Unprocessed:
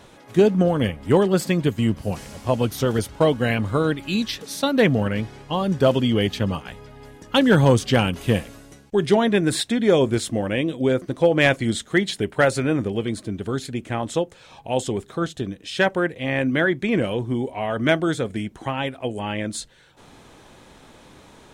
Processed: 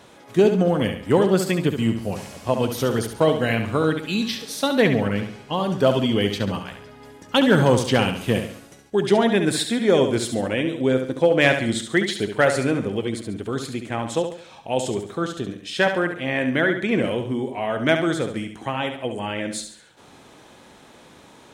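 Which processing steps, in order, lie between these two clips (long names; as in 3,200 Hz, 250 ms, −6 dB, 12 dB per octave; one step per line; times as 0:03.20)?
high-pass filter 140 Hz 6 dB per octave
on a send: flutter between parallel walls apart 11.9 metres, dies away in 0.53 s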